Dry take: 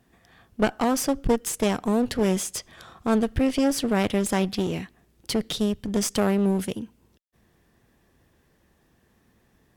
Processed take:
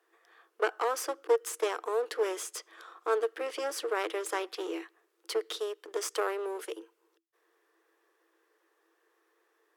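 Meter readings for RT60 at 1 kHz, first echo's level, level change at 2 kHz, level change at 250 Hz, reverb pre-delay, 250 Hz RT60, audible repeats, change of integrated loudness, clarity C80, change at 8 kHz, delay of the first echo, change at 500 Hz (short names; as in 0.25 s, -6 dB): none, none, -4.0 dB, -22.0 dB, none, none, none, -8.0 dB, none, -9.0 dB, none, -4.5 dB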